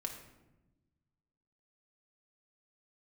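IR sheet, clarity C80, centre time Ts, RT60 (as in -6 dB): 9.5 dB, 23 ms, 1.0 s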